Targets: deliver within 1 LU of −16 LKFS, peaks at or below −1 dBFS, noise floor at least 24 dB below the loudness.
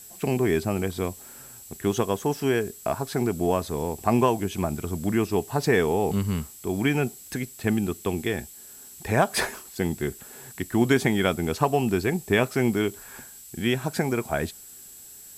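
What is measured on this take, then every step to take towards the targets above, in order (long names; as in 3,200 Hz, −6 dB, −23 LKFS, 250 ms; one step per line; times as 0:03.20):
interfering tone 7,700 Hz; level of the tone −47 dBFS; background noise floor −46 dBFS; target noise floor −50 dBFS; integrated loudness −26.0 LKFS; sample peak −6.0 dBFS; target loudness −16.0 LKFS
→ notch filter 7,700 Hz, Q 30
noise reduction from a noise print 6 dB
level +10 dB
brickwall limiter −1 dBFS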